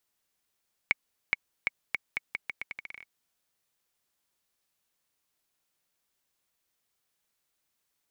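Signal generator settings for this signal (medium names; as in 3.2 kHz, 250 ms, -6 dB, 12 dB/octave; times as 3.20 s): bouncing ball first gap 0.42 s, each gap 0.81, 2.22 kHz, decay 23 ms -9 dBFS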